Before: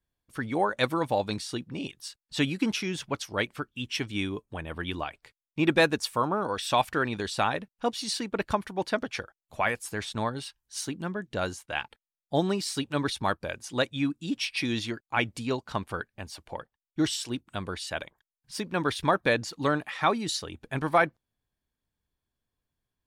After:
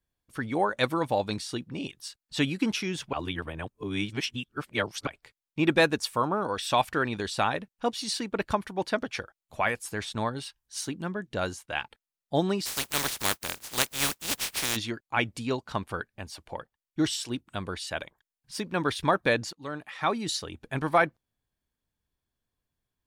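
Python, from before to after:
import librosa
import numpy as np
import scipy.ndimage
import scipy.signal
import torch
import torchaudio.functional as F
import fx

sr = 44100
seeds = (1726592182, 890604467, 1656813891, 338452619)

y = fx.spec_flatten(x, sr, power=0.19, at=(12.65, 14.75), fade=0.02)
y = fx.edit(y, sr, fx.reverse_span(start_s=3.13, length_s=1.94),
    fx.fade_in_from(start_s=19.53, length_s=0.76, floor_db=-20.5), tone=tone)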